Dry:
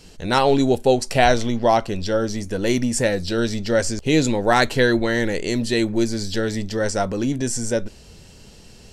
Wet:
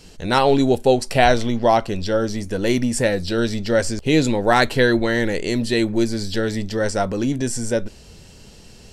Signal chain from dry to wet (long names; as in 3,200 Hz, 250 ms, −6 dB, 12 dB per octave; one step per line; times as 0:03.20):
dynamic equaliser 6,500 Hz, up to −5 dB, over −43 dBFS, Q 2.6
level +1 dB